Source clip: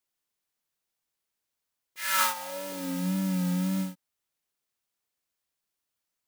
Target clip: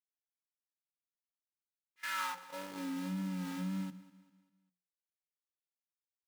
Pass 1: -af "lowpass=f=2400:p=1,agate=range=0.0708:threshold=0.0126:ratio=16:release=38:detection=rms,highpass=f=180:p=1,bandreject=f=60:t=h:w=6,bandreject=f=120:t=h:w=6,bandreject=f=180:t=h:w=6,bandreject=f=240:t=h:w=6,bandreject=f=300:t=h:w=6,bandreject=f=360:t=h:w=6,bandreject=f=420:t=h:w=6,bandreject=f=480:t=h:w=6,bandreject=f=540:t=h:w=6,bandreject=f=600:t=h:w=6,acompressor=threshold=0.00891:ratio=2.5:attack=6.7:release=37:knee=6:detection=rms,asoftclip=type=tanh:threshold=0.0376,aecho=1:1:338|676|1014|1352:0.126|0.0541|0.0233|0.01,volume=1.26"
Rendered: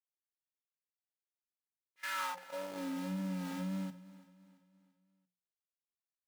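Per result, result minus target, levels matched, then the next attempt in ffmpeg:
echo 140 ms late; saturation: distortion +12 dB; 500 Hz band +6.0 dB
-af "lowpass=f=2400:p=1,agate=range=0.0708:threshold=0.0126:ratio=16:release=38:detection=rms,highpass=f=180:p=1,bandreject=f=60:t=h:w=6,bandreject=f=120:t=h:w=6,bandreject=f=180:t=h:w=6,bandreject=f=240:t=h:w=6,bandreject=f=300:t=h:w=6,bandreject=f=360:t=h:w=6,bandreject=f=420:t=h:w=6,bandreject=f=480:t=h:w=6,bandreject=f=540:t=h:w=6,bandreject=f=600:t=h:w=6,acompressor=threshold=0.00891:ratio=2.5:attack=6.7:release=37:knee=6:detection=rms,asoftclip=type=tanh:threshold=0.0376,aecho=1:1:198|396|594|792:0.126|0.0541|0.0233|0.01,volume=1.26"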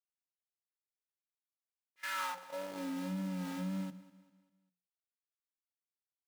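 saturation: distortion +12 dB; 500 Hz band +6.0 dB
-af "lowpass=f=2400:p=1,agate=range=0.0708:threshold=0.0126:ratio=16:release=38:detection=rms,highpass=f=180:p=1,bandreject=f=60:t=h:w=6,bandreject=f=120:t=h:w=6,bandreject=f=180:t=h:w=6,bandreject=f=240:t=h:w=6,bandreject=f=300:t=h:w=6,bandreject=f=360:t=h:w=6,bandreject=f=420:t=h:w=6,bandreject=f=480:t=h:w=6,bandreject=f=540:t=h:w=6,bandreject=f=600:t=h:w=6,acompressor=threshold=0.00891:ratio=2.5:attack=6.7:release=37:knee=6:detection=rms,asoftclip=type=tanh:threshold=0.0794,aecho=1:1:198|396|594|792:0.126|0.0541|0.0233|0.01,volume=1.26"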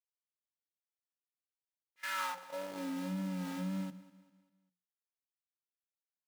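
500 Hz band +6.0 dB
-af "lowpass=f=2400:p=1,agate=range=0.0708:threshold=0.0126:ratio=16:release=38:detection=rms,highpass=f=180:p=1,equalizer=f=620:w=3.2:g=-11,bandreject=f=60:t=h:w=6,bandreject=f=120:t=h:w=6,bandreject=f=180:t=h:w=6,bandreject=f=240:t=h:w=6,bandreject=f=300:t=h:w=6,bandreject=f=360:t=h:w=6,bandreject=f=420:t=h:w=6,bandreject=f=480:t=h:w=6,bandreject=f=540:t=h:w=6,bandreject=f=600:t=h:w=6,acompressor=threshold=0.00891:ratio=2.5:attack=6.7:release=37:knee=6:detection=rms,asoftclip=type=tanh:threshold=0.0794,aecho=1:1:198|396|594|792:0.126|0.0541|0.0233|0.01,volume=1.26"

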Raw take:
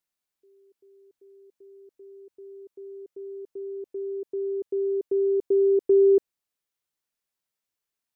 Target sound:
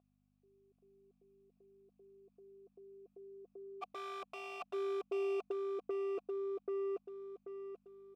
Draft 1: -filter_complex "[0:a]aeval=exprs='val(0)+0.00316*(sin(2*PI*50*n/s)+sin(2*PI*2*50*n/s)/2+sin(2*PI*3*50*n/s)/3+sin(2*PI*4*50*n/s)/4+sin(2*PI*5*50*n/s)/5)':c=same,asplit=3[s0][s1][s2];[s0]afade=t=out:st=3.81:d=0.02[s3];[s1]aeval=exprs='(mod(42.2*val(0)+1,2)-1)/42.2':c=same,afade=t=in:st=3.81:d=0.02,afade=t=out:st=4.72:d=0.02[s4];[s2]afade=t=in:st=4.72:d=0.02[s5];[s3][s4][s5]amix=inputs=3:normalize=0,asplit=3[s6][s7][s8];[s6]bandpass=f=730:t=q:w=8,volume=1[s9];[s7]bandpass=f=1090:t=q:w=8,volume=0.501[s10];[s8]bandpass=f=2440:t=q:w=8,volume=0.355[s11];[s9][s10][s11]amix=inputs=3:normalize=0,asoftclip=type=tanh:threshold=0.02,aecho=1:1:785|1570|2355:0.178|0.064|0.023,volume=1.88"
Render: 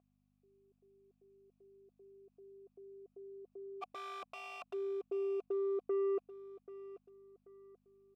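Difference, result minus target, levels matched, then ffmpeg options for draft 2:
echo-to-direct -12 dB
-filter_complex "[0:a]aeval=exprs='val(0)+0.00316*(sin(2*PI*50*n/s)+sin(2*PI*2*50*n/s)/2+sin(2*PI*3*50*n/s)/3+sin(2*PI*4*50*n/s)/4+sin(2*PI*5*50*n/s)/5)':c=same,asplit=3[s0][s1][s2];[s0]afade=t=out:st=3.81:d=0.02[s3];[s1]aeval=exprs='(mod(42.2*val(0)+1,2)-1)/42.2':c=same,afade=t=in:st=3.81:d=0.02,afade=t=out:st=4.72:d=0.02[s4];[s2]afade=t=in:st=4.72:d=0.02[s5];[s3][s4][s5]amix=inputs=3:normalize=0,asplit=3[s6][s7][s8];[s6]bandpass=f=730:t=q:w=8,volume=1[s9];[s7]bandpass=f=1090:t=q:w=8,volume=0.501[s10];[s8]bandpass=f=2440:t=q:w=8,volume=0.355[s11];[s9][s10][s11]amix=inputs=3:normalize=0,asoftclip=type=tanh:threshold=0.02,aecho=1:1:785|1570|2355|3140|3925:0.708|0.255|0.0917|0.033|0.0119,volume=1.88"

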